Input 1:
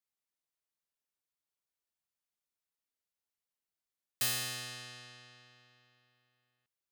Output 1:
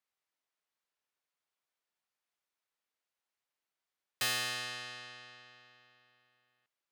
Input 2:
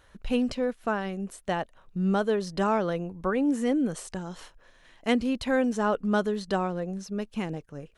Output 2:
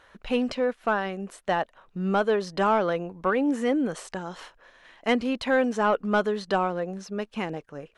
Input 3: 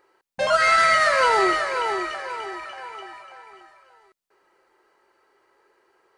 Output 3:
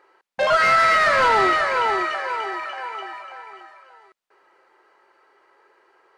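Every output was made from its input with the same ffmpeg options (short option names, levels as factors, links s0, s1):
-filter_complex "[0:a]asplit=2[s0][s1];[s1]highpass=f=720:p=1,volume=6.31,asoftclip=type=tanh:threshold=0.531[s2];[s0][s2]amix=inputs=2:normalize=0,lowpass=f=2200:p=1,volume=0.501,volume=0.75"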